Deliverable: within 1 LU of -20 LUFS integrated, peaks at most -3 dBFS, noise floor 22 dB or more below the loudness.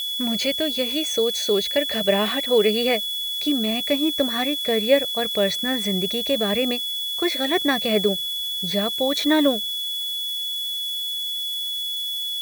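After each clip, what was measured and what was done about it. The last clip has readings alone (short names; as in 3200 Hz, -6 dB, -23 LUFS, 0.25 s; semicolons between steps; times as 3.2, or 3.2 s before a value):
steady tone 3400 Hz; tone level -25 dBFS; noise floor -28 dBFS; noise floor target -44 dBFS; loudness -21.5 LUFS; peak -4.5 dBFS; loudness target -20.0 LUFS
-> notch 3400 Hz, Q 30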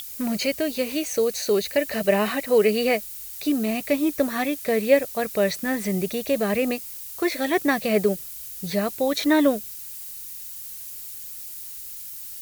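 steady tone none; noise floor -38 dBFS; noise floor target -47 dBFS
-> denoiser 9 dB, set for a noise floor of -38 dBFS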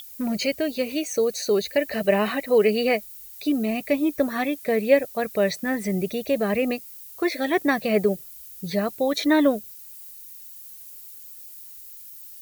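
noise floor -43 dBFS; noise floor target -46 dBFS
-> denoiser 6 dB, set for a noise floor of -43 dBFS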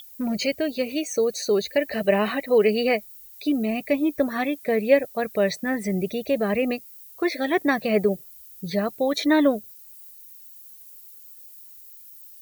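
noise floor -46 dBFS; loudness -23.5 LUFS; peak -5.0 dBFS; loudness target -20.0 LUFS
-> gain +3.5 dB; limiter -3 dBFS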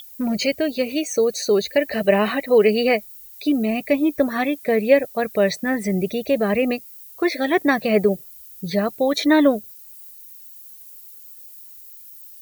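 loudness -20.5 LUFS; peak -3.0 dBFS; noise floor -43 dBFS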